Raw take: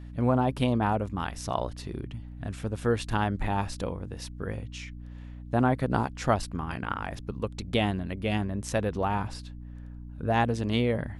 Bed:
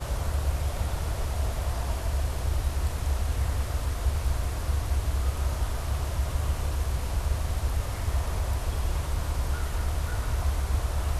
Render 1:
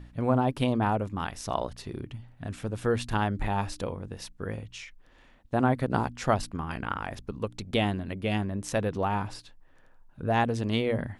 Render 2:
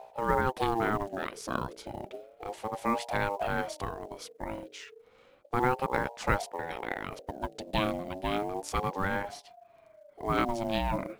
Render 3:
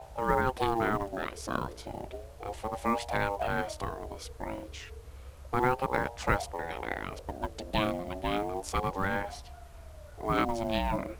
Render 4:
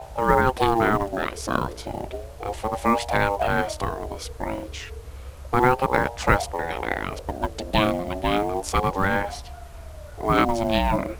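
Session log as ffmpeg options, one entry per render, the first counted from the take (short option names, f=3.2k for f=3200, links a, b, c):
-af "bandreject=f=60:t=h:w=4,bandreject=f=120:t=h:w=4,bandreject=f=180:t=h:w=4,bandreject=f=240:t=h:w=4,bandreject=f=300:t=h:w=4"
-af "acrusher=bits=7:mode=log:mix=0:aa=0.000001,aeval=exprs='val(0)*sin(2*PI*570*n/s+570*0.25/0.32*sin(2*PI*0.32*n/s))':c=same"
-filter_complex "[1:a]volume=-20.5dB[a];[0:a][a]amix=inputs=2:normalize=0"
-af "volume=8.5dB"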